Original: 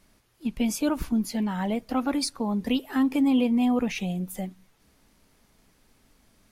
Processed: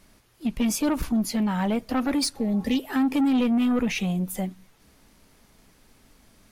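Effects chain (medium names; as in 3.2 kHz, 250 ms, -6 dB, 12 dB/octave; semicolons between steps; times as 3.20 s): saturation -23 dBFS, distortion -12 dB; spectral replace 2.37–2.74 s, 680–1700 Hz after; trim +5 dB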